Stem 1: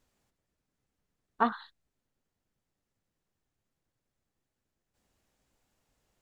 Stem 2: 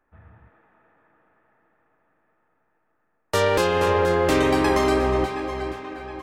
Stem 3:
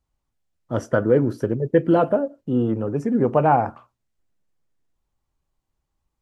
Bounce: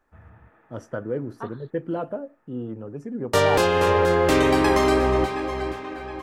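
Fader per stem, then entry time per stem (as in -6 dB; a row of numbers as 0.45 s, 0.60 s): -10.5 dB, +1.0 dB, -11.0 dB; 0.00 s, 0.00 s, 0.00 s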